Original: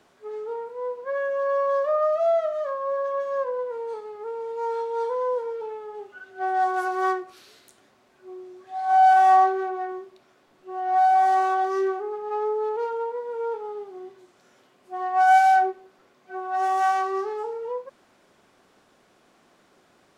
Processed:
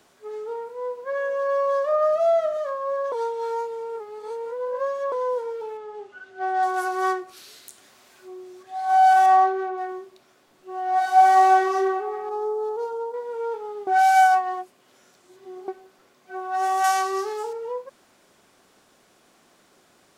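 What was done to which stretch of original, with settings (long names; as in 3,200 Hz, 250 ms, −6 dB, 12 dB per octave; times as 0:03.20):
0:00.68–0:01.30: delay throw 420 ms, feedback 35%, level −13.5 dB
0:01.92–0:02.57: low-shelf EQ 270 Hz +10.5 dB
0:03.12–0:05.12: reverse
0:05.77–0:06.63: high-frequency loss of the air 63 metres
0:07.15–0:08.63: one half of a high-frequency compander encoder only
0:09.26–0:09.78: high-shelf EQ 5,300 Hz −11 dB
0:10.96–0:11.55: thrown reverb, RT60 2.4 s, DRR −3 dB
0:12.29–0:13.14: parametric band 2,200 Hz −14 dB 1.3 octaves
0:13.87–0:15.68: reverse
0:16.84–0:17.53: high-shelf EQ 3,300 Hz +10.5 dB
whole clip: high-shelf EQ 4,900 Hz +10 dB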